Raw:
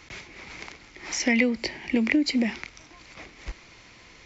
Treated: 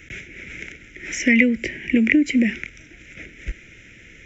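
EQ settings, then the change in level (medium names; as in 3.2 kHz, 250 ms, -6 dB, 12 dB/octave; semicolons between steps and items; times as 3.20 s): Butterworth band-stop 1.1 kHz, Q 1.8; static phaser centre 1.9 kHz, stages 4; +7.5 dB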